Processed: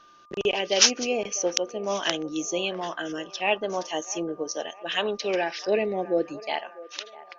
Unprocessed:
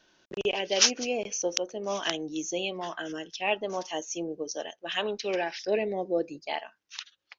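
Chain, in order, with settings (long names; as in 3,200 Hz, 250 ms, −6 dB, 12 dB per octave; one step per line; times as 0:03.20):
steady tone 1,200 Hz −56 dBFS
delay with a band-pass on its return 650 ms, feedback 47%, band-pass 870 Hz, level −16.5 dB
level +3.5 dB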